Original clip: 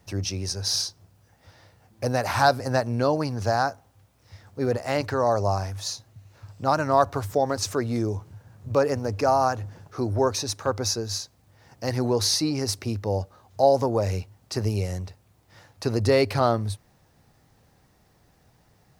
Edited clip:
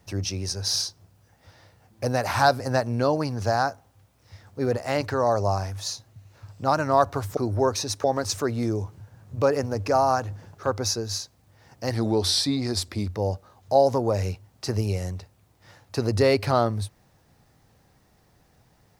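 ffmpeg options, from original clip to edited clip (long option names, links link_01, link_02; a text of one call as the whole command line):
ffmpeg -i in.wav -filter_complex "[0:a]asplit=6[link_01][link_02][link_03][link_04][link_05][link_06];[link_01]atrim=end=7.372[link_07];[link_02]atrim=start=9.958:end=10.632[link_08];[link_03]atrim=start=7.368:end=9.962[link_09];[link_04]atrim=start=10.628:end=11.944[link_10];[link_05]atrim=start=11.94:end=13.03,asetpts=PTS-STARTPTS,asetrate=39690,aresample=44100[link_11];[link_06]atrim=start=13.026[link_12];[link_07][link_08]acrossfade=duration=0.004:curve1=hsin:curve2=hsin[link_13];[link_13][link_09]acrossfade=duration=0.004:curve1=hsin:curve2=hsin[link_14];[link_14][link_10]acrossfade=duration=0.004:curve1=hsin:curve2=hsin[link_15];[link_15][link_11]acrossfade=duration=0.004:curve1=hsin:curve2=hsin[link_16];[link_16][link_12]acrossfade=duration=0.004:curve1=hsin:curve2=hsin" out.wav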